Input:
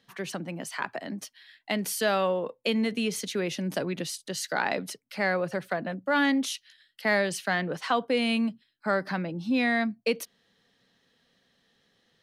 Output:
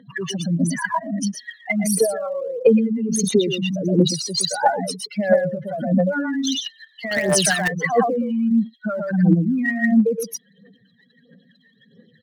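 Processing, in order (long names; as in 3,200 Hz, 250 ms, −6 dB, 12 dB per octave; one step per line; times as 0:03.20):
expanding power law on the bin magnitudes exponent 4
notch filter 2,600 Hz, Q 11
single-tap delay 118 ms −4 dB
brickwall limiter −25 dBFS, peak gain reduction 9.5 dB
phase shifter 1.5 Hz, delay 1.1 ms, feedback 76%
high-pass filter 130 Hz 12 dB per octave
0:07.11–0:07.68: every bin compressed towards the loudest bin 2 to 1
level +9 dB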